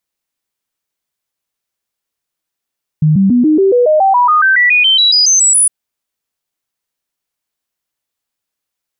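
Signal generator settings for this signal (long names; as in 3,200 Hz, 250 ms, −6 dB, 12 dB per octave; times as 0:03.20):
stepped sweep 154 Hz up, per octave 3, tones 19, 0.14 s, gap 0.00 s −6 dBFS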